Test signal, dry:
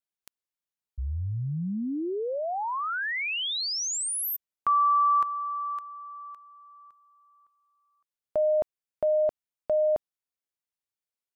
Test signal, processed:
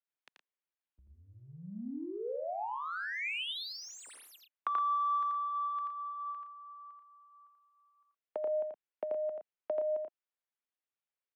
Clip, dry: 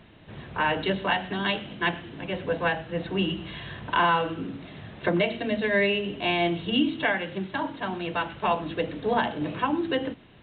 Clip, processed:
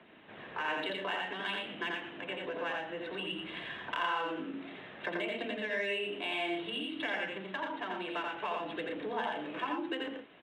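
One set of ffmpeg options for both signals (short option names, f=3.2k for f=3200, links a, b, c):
-filter_complex "[0:a]acrossover=split=150|580|1000[a][b][c][d];[d]adynamicsmooth=sensitivity=6.5:basefreq=3.1k[e];[a][b][c][e]amix=inputs=4:normalize=0,highshelf=f=2.1k:g=12,acompressor=threshold=-40dB:ratio=2.5:attack=58:release=36:knee=6:detection=peak,aphaser=in_gain=1:out_gain=1:delay=3.6:decay=0.24:speed=0.56:type=triangular,acrossover=split=220 3600:gain=0.0708 1 0.126[f][g][h];[f][g][h]amix=inputs=3:normalize=0,aecho=1:1:84.55|116.6:0.708|0.355,volume=-5dB"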